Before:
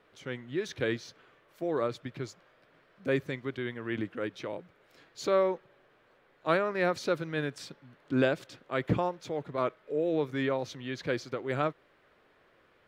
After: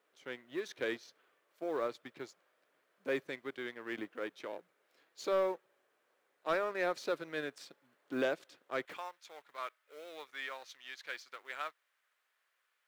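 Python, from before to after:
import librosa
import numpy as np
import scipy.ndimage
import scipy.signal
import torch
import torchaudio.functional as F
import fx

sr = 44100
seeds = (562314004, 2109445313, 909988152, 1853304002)

y = fx.law_mismatch(x, sr, coded='A')
y = fx.highpass(y, sr, hz=fx.steps((0.0, 340.0), (8.85, 1300.0)), slope=12)
y = 10.0 ** (-20.5 / 20.0) * np.tanh(y / 10.0 ** (-20.5 / 20.0))
y = y * librosa.db_to_amplitude(-2.5)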